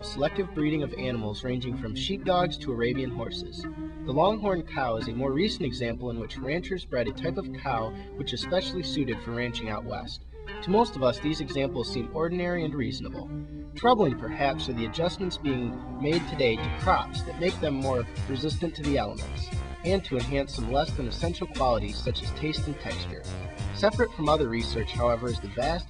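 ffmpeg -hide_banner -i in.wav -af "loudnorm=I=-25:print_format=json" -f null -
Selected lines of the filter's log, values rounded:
"input_i" : "-28.9",
"input_tp" : "-8.6",
"input_lra" : "2.5",
"input_thresh" : "-38.9",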